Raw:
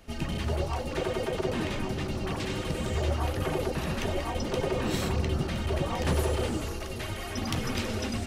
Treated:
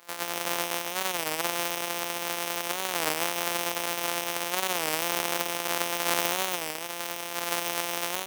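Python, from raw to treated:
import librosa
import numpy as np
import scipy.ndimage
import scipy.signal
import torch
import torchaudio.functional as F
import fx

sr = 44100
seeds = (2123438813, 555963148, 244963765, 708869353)

y = np.r_[np.sort(x[:len(x) // 256 * 256].reshape(-1, 256), axis=1).ravel(), x[len(x) // 256 * 256:]]
y = scipy.signal.sosfilt(scipy.signal.butter(2, 700.0, 'highpass', fs=sr, output='sos'), y)
y = fx.high_shelf(y, sr, hz=9500.0, db=8.0)
y = y + 10.0 ** (-10.0 / 20.0) * np.pad(y, (int(139 * sr / 1000.0), 0))[:len(y)]
y = fx.record_warp(y, sr, rpm=33.33, depth_cents=160.0)
y = y * 10.0 ** (5.5 / 20.0)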